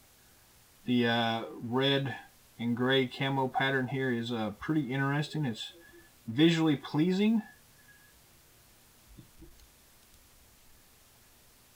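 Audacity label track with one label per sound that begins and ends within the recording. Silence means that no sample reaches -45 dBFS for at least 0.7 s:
0.860000	7.470000	sound
9.190000	10.140000	sound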